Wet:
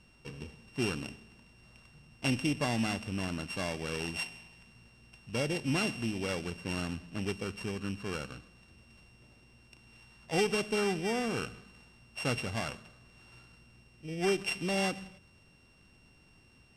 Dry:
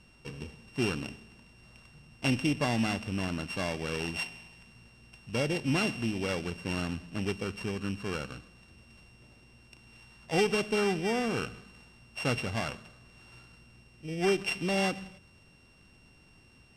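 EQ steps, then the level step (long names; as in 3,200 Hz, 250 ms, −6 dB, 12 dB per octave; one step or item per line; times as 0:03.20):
dynamic equaliser 9,700 Hz, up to +4 dB, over −50 dBFS, Q 0.73
−2.5 dB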